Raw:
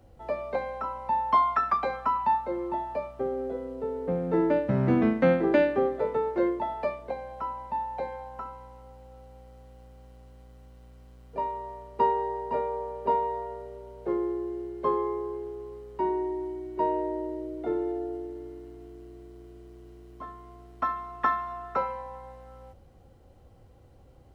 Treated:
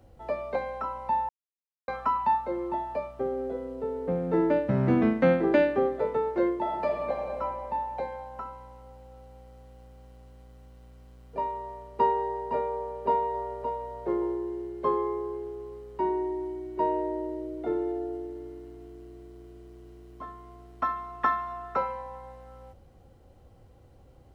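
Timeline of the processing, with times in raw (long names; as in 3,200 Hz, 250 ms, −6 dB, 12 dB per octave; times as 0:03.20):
0:01.29–0:01.88: silence
0:06.54–0:07.37: thrown reverb, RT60 2.3 s, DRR 0.5 dB
0:12.77–0:13.78: delay throw 570 ms, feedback 15%, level −8 dB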